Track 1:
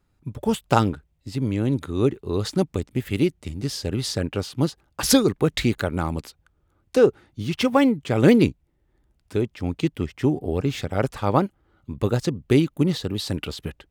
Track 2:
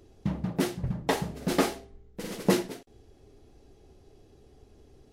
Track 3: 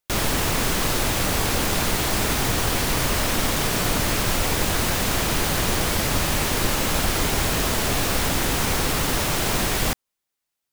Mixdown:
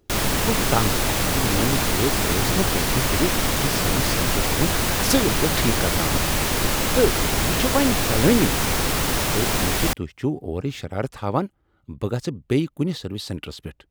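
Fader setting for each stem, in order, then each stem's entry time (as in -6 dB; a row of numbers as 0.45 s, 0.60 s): -3.0 dB, -6.5 dB, +0.5 dB; 0.00 s, 0.00 s, 0.00 s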